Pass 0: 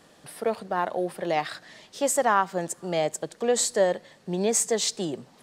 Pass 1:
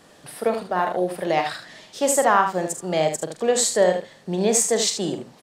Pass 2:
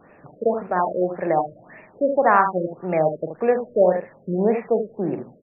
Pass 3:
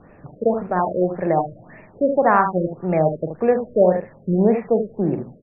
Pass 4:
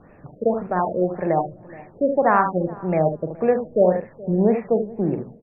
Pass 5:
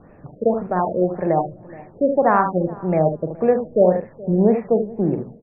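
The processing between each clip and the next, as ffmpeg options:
ffmpeg -i in.wav -af "aecho=1:1:44|76:0.355|0.398,volume=3.5dB" out.wav
ffmpeg -i in.wav -af "afftfilt=real='re*lt(b*sr/1024,610*pow(2800/610,0.5+0.5*sin(2*PI*1.8*pts/sr)))':imag='im*lt(b*sr/1024,610*pow(2800/610,0.5+0.5*sin(2*PI*1.8*pts/sr)))':win_size=1024:overlap=0.75,volume=1.5dB" out.wav
ffmpeg -i in.wav -af "aemphasis=mode=reproduction:type=bsi" out.wav
ffmpeg -i in.wav -filter_complex "[0:a]asplit=2[link_01][link_02];[link_02]adelay=422,lowpass=frequency=860:poles=1,volume=-19.5dB,asplit=2[link_03][link_04];[link_04]adelay=422,lowpass=frequency=860:poles=1,volume=0.21[link_05];[link_01][link_03][link_05]amix=inputs=3:normalize=0,volume=-1.5dB" out.wav
ffmpeg -i in.wav -af "highshelf=frequency=2000:gain=-9.5,volume=2.5dB" out.wav

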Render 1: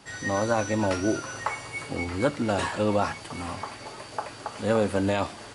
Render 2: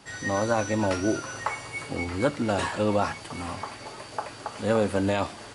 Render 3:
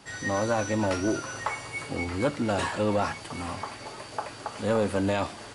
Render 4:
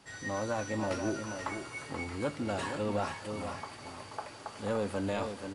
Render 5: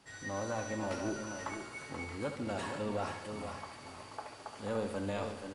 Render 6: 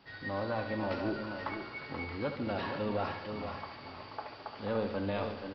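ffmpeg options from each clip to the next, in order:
ffmpeg -i in.wav -af anull out.wav
ffmpeg -i in.wav -af "asoftclip=type=tanh:threshold=-16dB" out.wav
ffmpeg -i in.wav -af "aecho=1:1:443|481:0.141|0.422,volume=-7.5dB" out.wav
ffmpeg -i in.wav -af "aecho=1:1:71|142|213|284|355|426|497:0.335|0.194|0.113|0.0654|0.0379|0.022|0.0128,volume=-4dB" out.wav
ffmpeg -i in.wav -af "aresample=11025,aresample=44100,volume=2.5dB" out.wav

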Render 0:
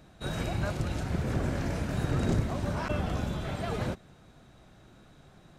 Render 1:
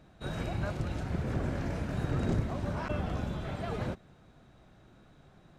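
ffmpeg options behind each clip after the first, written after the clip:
ffmpeg -i in.wav -af "highshelf=frequency=4600:gain=-8,volume=-2.5dB" out.wav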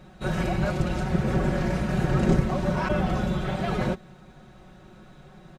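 ffmpeg -i in.wav -af "aecho=1:1:5.4:0.74,volume=7.5dB" out.wav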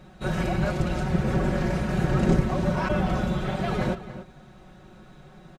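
ffmpeg -i in.wav -filter_complex "[0:a]asplit=2[link_01][link_02];[link_02]adelay=285.7,volume=-13dB,highshelf=frequency=4000:gain=-6.43[link_03];[link_01][link_03]amix=inputs=2:normalize=0" out.wav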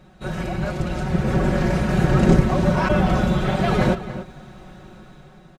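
ffmpeg -i in.wav -af "dynaudnorm=framelen=480:gausssize=5:maxgain=10dB,volume=-1dB" out.wav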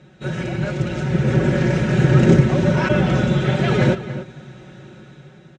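ffmpeg -i in.wav -af "highpass=110,equalizer=frequency=130:width_type=q:width=4:gain=6,equalizer=frequency=190:width_type=q:width=4:gain=-5,equalizer=frequency=720:width_type=q:width=4:gain=-9,equalizer=frequency=1100:width_type=q:width=4:gain=-10,equalizer=frequency=4600:width_type=q:width=4:gain=-6,lowpass=frequency=7300:width=0.5412,lowpass=frequency=7300:width=1.3066,volume=4dB" out.wav

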